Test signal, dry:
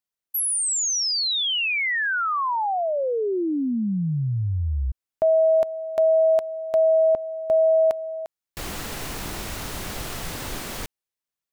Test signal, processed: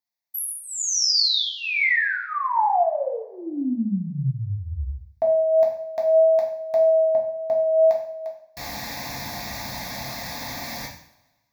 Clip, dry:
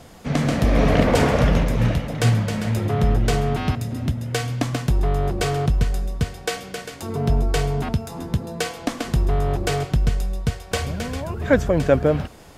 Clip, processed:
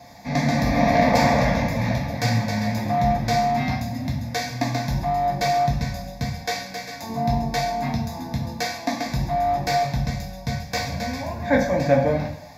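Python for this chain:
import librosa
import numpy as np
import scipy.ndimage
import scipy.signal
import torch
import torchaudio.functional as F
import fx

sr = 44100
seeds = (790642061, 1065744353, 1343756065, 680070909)

y = fx.fixed_phaser(x, sr, hz=2000.0, stages=8)
y = fx.vibrato(y, sr, rate_hz=1.8, depth_cents=8.7)
y = scipy.signal.sosfilt(scipy.signal.butter(2, 110.0, 'highpass', fs=sr, output='sos'), y)
y = fx.rev_double_slope(y, sr, seeds[0], early_s=0.57, late_s=1.5, knee_db=-20, drr_db=-2.0)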